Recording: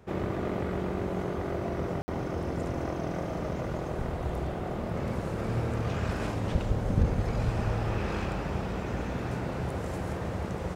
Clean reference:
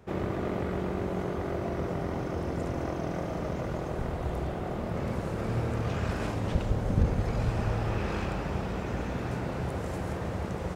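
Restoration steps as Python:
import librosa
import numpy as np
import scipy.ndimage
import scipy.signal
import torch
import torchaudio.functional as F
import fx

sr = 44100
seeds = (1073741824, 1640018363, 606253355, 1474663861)

y = fx.fix_ambience(x, sr, seeds[0], print_start_s=0.0, print_end_s=0.5, start_s=2.02, end_s=2.08)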